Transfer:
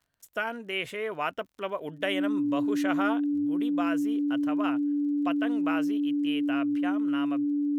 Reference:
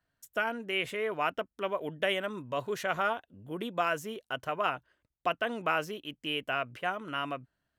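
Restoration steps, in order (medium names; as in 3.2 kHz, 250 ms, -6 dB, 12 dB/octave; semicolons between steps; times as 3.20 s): de-click; band-stop 290 Hz, Q 30; trim 0 dB, from 3.46 s +3.5 dB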